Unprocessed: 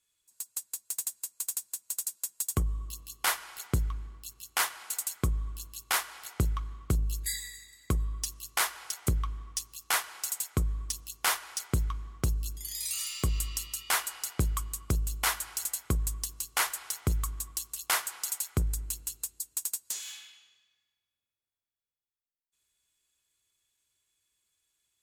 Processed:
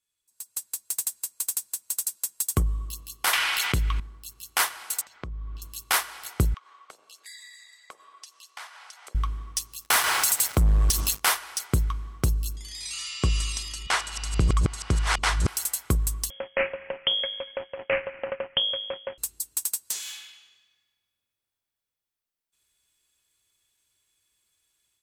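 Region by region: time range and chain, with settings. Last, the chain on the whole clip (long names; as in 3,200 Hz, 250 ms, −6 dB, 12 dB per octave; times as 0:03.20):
0:03.33–0:04.00: parametric band 2,700 Hz +13.5 dB 1.6 octaves + envelope flattener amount 70%
0:05.01–0:05.62: downward compressor 12 to 1, threshold −37 dBFS + high-frequency loss of the air 190 metres
0:06.54–0:09.15: high-pass filter 580 Hz 24 dB per octave + high-frequency loss of the air 69 metres + downward compressor 2.5 to 1, threshold −51 dBFS
0:09.84–0:11.20: downward compressor 5 to 1, threshold −39 dBFS + leveller curve on the samples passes 5
0:12.56–0:15.48: delay that plays each chunk backwards 656 ms, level −1 dB + Bessel low-pass filter 5,900 Hz, order 6
0:16.30–0:19.18: samples sorted by size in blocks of 16 samples + parametric band 64 Hz −5.5 dB 2.7 octaves + voice inversion scrambler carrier 3,300 Hz
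whole clip: automatic gain control gain up to 11.5 dB; notch filter 6,900 Hz, Q 18; level −6 dB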